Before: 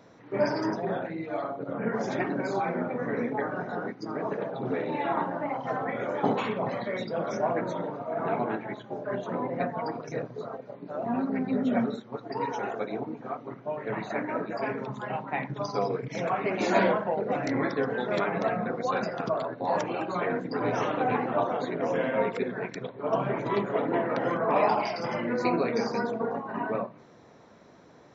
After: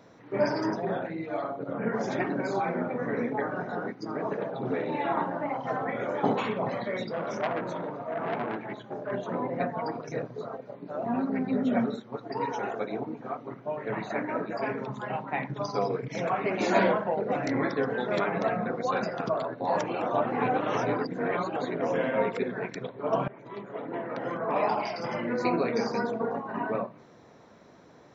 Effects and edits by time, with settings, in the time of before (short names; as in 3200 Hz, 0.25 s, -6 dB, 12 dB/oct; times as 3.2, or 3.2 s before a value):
7.1–9.12 core saturation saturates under 1500 Hz
20.02–21.56 reverse
23.28–26.17 fade in equal-power, from -21 dB